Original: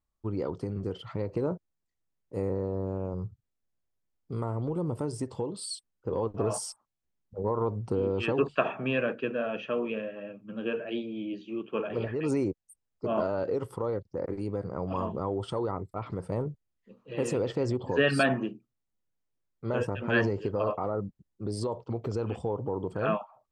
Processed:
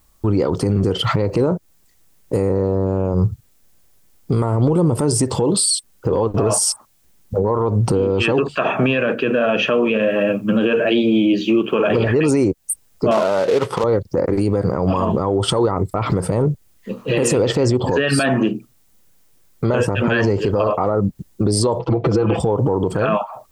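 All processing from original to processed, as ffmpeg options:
ffmpeg -i in.wav -filter_complex "[0:a]asettb=1/sr,asplit=3[link_01][link_02][link_03];[link_01]atrim=end=13.114[link_04];[link_02]atrim=start=13.11:end=13.84,asetpts=PTS-STARTPTS,afade=type=in:duration=0.004:curve=qsin,afade=type=out:start_time=0.726:duration=0.004:curve=qsin,equalizer=frequency=300:width=2.2:gain=-7,acrusher=bits=3:mode=log:mix=0:aa=0.000001,highpass=190,lowpass=3600[link_05];[link_03]atrim=start=13.836[link_06];[link_04][link_05]acrossfade=duration=0.004:curve1=hsin:curve2=qsin[link_07];[link_07][link_06]acrossfade=duration=0.004:curve1=qsin:curve2=hsin,asettb=1/sr,asplit=3[link_08][link_09][link_10];[link_08]atrim=end=21.794[link_11];[link_09]atrim=start=21.79:end=22.4,asetpts=PTS-STARTPTS,afade=type=in:duration=0.004:curve=qsin,afade=type=out:start_time=0.606:duration=0.004:curve=qsin,lowpass=3100,aecho=1:1:6:0.95,atrim=end_sample=26901[link_12];[link_10]atrim=start=22.396[link_13];[link_11][link_12]acrossfade=duration=0.004:curve1=hsin:curve2=qsin[link_14];[link_14][link_13]acrossfade=duration=0.004:curve1=qsin:curve2=hsin,highshelf=frequency=5900:gain=9.5,acompressor=threshold=-36dB:ratio=6,alimiter=level_in=33dB:limit=-1dB:release=50:level=0:latency=1,volume=-7dB" out.wav

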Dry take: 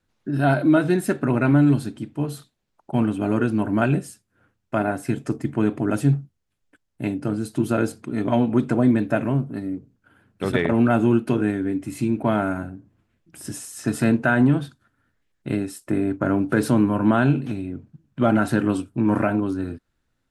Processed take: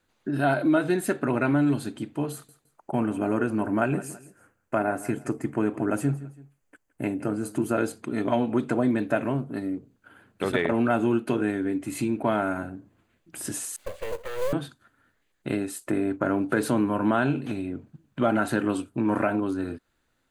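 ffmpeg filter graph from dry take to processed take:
ffmpeg -i in.wav -filter_complex "[0:a]asettb=1/sr,asplit=3[link_01][link_02][link_03];[link_01]atrim=end=2.324[link_04];[link_02]atrim=start=2.32:end=7.77,asetpts=PTS-STARTPTS,afade=type=in:duration=0.004:curve=qsin,afade=type=out:start_time=5.446:duration=0.004:curve=qsin,equalizer=frequency=3700:width_type=o:width=0.62:gain=-11.5,aecho=1:1:165|330:0.112|0.0292,atrim=end_sample=240345[link_05];[link_03]atrim=start=7.766[link_06];[link_04][link_05]acrossfade=duration=0.004:curve1=hsin:curve2=qsin[link_07];[link_07][link_06]acrossfade=duration=0.004:curve1=qsin:curve2=hsin,asettb=1/sr,asplit=3[link_08][link_09][link_10];[link_08]atrim=end=13.764[link_11];[link_09]atrim=start=13.76:end=14.53,asetpts=PTS-STARTPTS,afade=type=in:duration=0.004:curve=qsin,afade=type=out:start_time=0.766:duration=0.004:curve=qsin,asplit=3[link_12][link_13][link_14];[link_12]bandpass=frequency=270:width_type=q:width=8,volume=0dB[link_15];[link_13]bandpass=frequency=2290:width_type=q:width=8,volume=-6dB[link_16];[link_14]bandpass=frequency=3010:width_type=q:width=8,volume=-9dB[link_17];[link_15][link_16][link_17]amix=inputs=3:normalize=0,aeval=exprs='abs(val(0))':channel_layout=same,acrusher=bits=6:mode=log:mix=0:aa=0.000001[link_18];[link_10]atrim=start=14.526[link_19];[link_11][link_18]acrossfade=duration=0.004:curve1=hsin:curve2=qsin[link_20];[link_20][link_19]acrossfade=duration=0.004:curve1=qsin:curve2=hsin,bass=frequency=250:gain=-8,treble=frequency=4000:gain=0,bandreject=frequency=5400:width=7.9,acompressor=threshold=-37dB:ratio=1.5,volume=5dB" out.wav

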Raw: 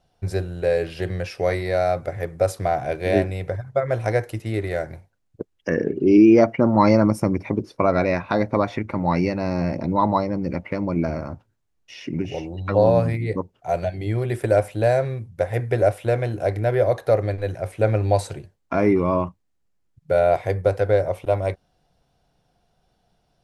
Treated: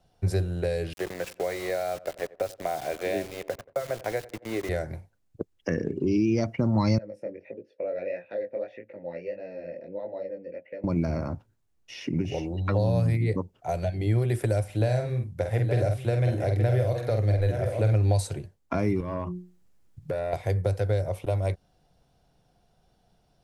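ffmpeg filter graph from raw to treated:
ffmpeg -i in.wav -filter_complex "[0:a]asettb=1/sr,asplit=3[link_01][link_02][link_03];[link_01]atrim=end=0.934[link_04];[link_02]atrim=start=0.93:end=4.69,asetpts=PTS-STARTPTS,afade=type=in:duration=0.004:curve=qsin,afade=type=out:start_time=3.756:duration=0.004:curve=qsin,highpass=310,lowpass=3500,aeval=exprs='val(0)*gte(abs(val(0)),0.02)':channel_layout=same,asplit=2[link_05][link_06];[link_06]adelay=89,lowpass=frequency=1700:poles=1,volume=-21dB,asplit=2[link_07][link_08];[link_08]adelay=89,lowpass=frequency=1700:poles=1,volume=0.52,asplit=2[link_09][link_10];[link_10]adelay=89,lowpass=frequency=1700:poles=1,volume=0.52,asplit=2[link_11][link_12];[link_12]adelay=89,lowpass=frequency=1700:poles=1,volume=0.52[link_13];[link_05][link_07][link_09][link_11][link_13]amix=inputs=5:normalize=0,atrim=end_sample=165816[link_14];[link_03]atrim=start=4.686[link_15];[link_04][link_14]acrossfade=duration=0.004:curve1=hsin:curve2=qsin[link_16];[link_16][link_15]acrossfade=duration=0.004:curve1=qsin:curve2=hsin,asettb=1/sr,asplit=3[link_17][link_18][link_19];[link_17]atrim=end=6.984[link_20];[link_18]atrim=start=6.98:end=10.84,asetpts=PTS-STARTPTS,afade=type=in:duration=0.004:curve=qsin,afade=type=out:start_time=3.856:duration=0.004:curve=qsin,flanger=delay=17:depth=7.5:speed=1.6,asplit=3[link_21][link_22][link_23];[link_21]bandpass=frequency=530:width_type=q:width=8,volume=0dB[link_24];[link_22]bandpass=frequency=1840:width_type=q:width=8,volume=-6dB[link_25];[link_23]bandpass=frequency=2480:width_type=q:width=8,volume=-9dB[link_26];[link_24][link_25][link_26]amix=inputs=3:normalize=0[link_27];[link_19]atrim=start=10.836[link_28];[link_20][link_27]acrossfade=duration=0.004:curve1=hsin:curve2=qsin[link_29];[link_29][link_28]acrossfade=duration=0.004:curve1=qsin:curve2=hsin,asettb=1/sr,asplit=3[link_30][link_31][link_32];[link_30]atrim=end=14.644[link_33];[link_31]atrim=start=14.64:end=17.93,asetpts=PTS-STARTPTS,afade=type=in:duration=0.004:curve=qsin,afade=type=out:start_time=3.286:duration=0.004:curve=qsin,acrossover=split=5400[link_34][link_35];[link_35]acompressor=threshold=-55dB:ratio=4:attack=1:release=60[link_36];[link_34][link_36]amix=inputs=2:normalize=0,asplit=2[link_37][link_38];[link_38]adelay=48,volume=-5.5dB[link_39];[link_37][link_39]amix=inputs=2:normalize=0,atrim=end_sample=145089,aecho=1:1:870:0.316,atrim=end_sample=145089[link_40];[link_32]atrim=start=17.926[link_41];[link_33][link_40]acrossfade=duration=0.004:curve1=hsin:curve2=qsin[link_42];[link_42][link_41]acrossfade=duration=0.004:curve1=qsin:curve2=hsin,asettb=1/sr,asplit=3[link_43][link_44][link_45];[link_43]atrim=end=19.004[link_46];[link_44]atrim=start=19:end=20.33,asetpts=PTS-STARTPTS,afade=type=in:duration=0.004:curve=qsin,afade=type=out:start_time=1.326:duration=0.004:curve=qsin,bandreject=frequency=60:width_type=h:width=6,bandreject=frequency=120:width_type=h:width=6,bandreject=frequency=180:width_type=h:width=6,bandreject=frequency=240:width_type=h:width=6,bandreject=frequency=300:width_type=h:width=6,bandreject=frequency=360:width_type=h:width=6,bandreject=frequency=420:width_type=h:width=6,acompressor=threshold=-38dB:ratio=2.5:attack=3.2:release=140:knee=1:detection=peak,aeval=exprs='0.0891*sin(PI/2*1.58*val(0)/0.0891)':channel_layout=same[link_47];[link_45]atrim=start=20.326[link_48];[link_46][link_47]acrossfade=duration=0.004:curve1=hsin:curve2=qsin[link_49];[link_49][link_48]acrossfade=duration=0.004:curve1=qsin:curve2=hsin,equalizer=frequency=1900:width=0.33:gain=-3,acrossover=split=160|3000[link_50][link_51][link_52];[link_51]acompressor=threshold=-28dB:ratio=6[link_53];[link_50][link_53][link_52]amix=inputs=3:normalize=0,volume=1.5dB" out.wav

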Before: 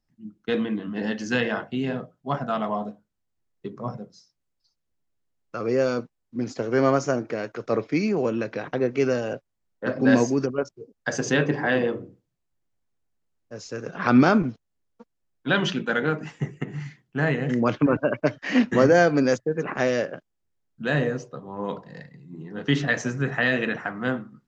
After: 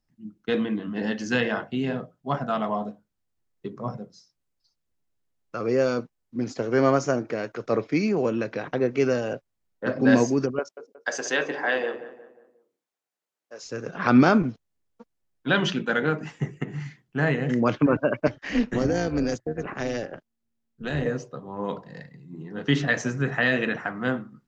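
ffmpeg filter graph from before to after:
ffmpeg -i in.wav -filter_complex "[0:a]asettb=1/sr,asplit=3[link_01][link_02][link_03];[link_01]atrim=end=10.594[link_04];[link_02]atrim=start=10.59:end=13.63,asetpts=PTS-STARTPTS,afade=type=in:duration=0.004:curve=qsin,afade=type=out:start_time=3.036:duration=0.004:curve=qsin,highpass=500,asplit=2[link_05][link_06];[link_06]adelay=179,lowpass=frequency=1700:poles=1,volume=-12.5dB,asplit=2[link_07][link_08];[link_08]adelay=179,lowpass=frequency=1700:poles=1,volume=0.44,asplit=2[link_09][link_10];[link_10]adelay=179,lowpass=frequency=1700:poles=1,volume=0.44,asplit=2[link_11][link_12];[link_12]adelay=179,lowpass=frequency=1700:poles=1,volume=0.44[link_13];[link_05][link_07][link_09][link_11][link_13]amix=inputs=5:normalize=0,atrim=end_sample=134064[link_14];[link_03]atrim=start=13.626[link_15];[link_04][link_14]acrossfade=duration=0.004:curve1=hsin:curve2=qsin[link_16];[link_16][link_15]acrossfade=duration=0.004:curve1=qsin:curve2=hsin,asettb=1/sr,asplit=3[link_17][link_18][link_19];[link_17]atrim=end=18.274[link_20];[link_18]atrim=start=18.27:end=21.06,asetpts=PTS-STARTPTS,afade=type=in:duration=0.004:curve=qsin,afade=type=out:start_time=2.786:duration=0.004:curve=qsin,tremolo=f=230:d=0.621,acrossover=split=380|3000[link_21][link_22][link_23];[link_22]acompressor=threshold=-30dB:ratio=4:attack=3.2:release=140:knee=2.83:detection=peak[link_24];[link_21][link_24][link_23]amix=inputs=3:normalize=0[link_25];[link_19]atrim=start=21.056[link_26];[link_20][link_25]acrossfade=duration=0.004:curve1=hsin:curve2=qsin[link_27];[link_27][link_26]acrossfade=duration=0.004:curve1=qsin:curve2=hsin" out.wav

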